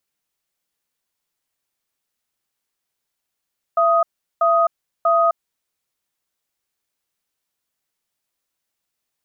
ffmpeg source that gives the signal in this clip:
-f lavfi -i "aevalsrc='0.168*(sin(2*PI*672*t)+sin(2*PI*1250*t))*clip(min(mod(t,0.64),0.26-mod(t,0.64))/0.005,0,1)':d=1.61:s=44100"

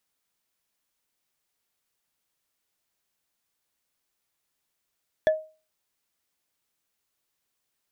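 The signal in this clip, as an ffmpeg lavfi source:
-f lavfi -i "aevalsrc='0.2*pow(10,-3*t/0.34)*sin(2*PI*627*t)+0.0708*pow(10,-3*t/0.101)*sin(2*PI*1728.6*t)+0.0251*pow(10,-3*t/0.045)*sin(2*PI*3388.3*t)+0.00891*pow(10,-3*t/0.025)*sin(2*PI*5601*t)+0.00316*pow(10,-3*t/0.015)*sin(2*PI*8364.2*t)':d=0.45:s=44100"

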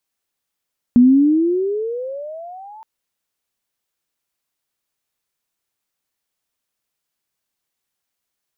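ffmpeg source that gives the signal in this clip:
-f lavfi -i "aevalsrc='pow(10,(-5.5-30.5*t/1.87)/20)*sin(2*PI*238*1.87/(23*log(2)/12)*(exp(23*log(2)/12*t/1.87)-1))':d=1.87:s=44100"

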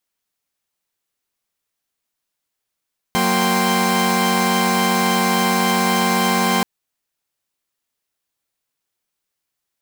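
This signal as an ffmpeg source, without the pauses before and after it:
-f lavfi -i "aevalsrc='0.119*((2*mod(185*t,1)-1)+(2*mod(233.08*t,1)-1)+(2*mod(783.99*t,1)-1)+(2*mod(1046.5*t,1)-1))':d=3.48:s=44100"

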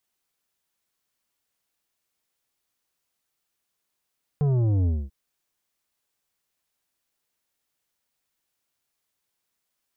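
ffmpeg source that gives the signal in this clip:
-f lavfi -i "aevalsrc='0.1*clip((0.69-t)/0.24,0,1)*tanh(2.99*sin(2*PI*150*0.69/log(65/150)*(exp(log(65/150)*t/0.69)-1)))/tanh(2.99)':d=0.69:s=44100"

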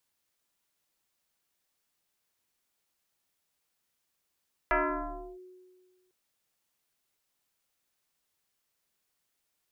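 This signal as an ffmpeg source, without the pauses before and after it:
-f lavfi -i "aevalsrc='0.0841*pow(10,-3*t/1.68)*sin(2*PI*367*t+5*clip(1-t/0.67,0,1)*sin(2*PI*0.9*367*t))':d=1.4:s=44100"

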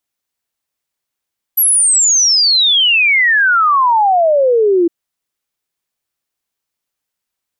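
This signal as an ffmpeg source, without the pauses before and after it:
-f lavfi -i "aevalsrc='0.398*clip(min(t,3.31-t)/0.01,0,1)*sin(2*PI*12000*3.31/log(330/12000)*(exp(log(330/12000)*t/3.31)-1))':d=3.31:s=44100"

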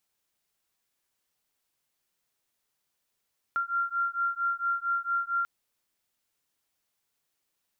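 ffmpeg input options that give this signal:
-f lavfi -i "aevalsrc='0.0335*(sin(2*PI*1380*t)+sin(2*PI*1384.4*t))':d=1.89:s=44100"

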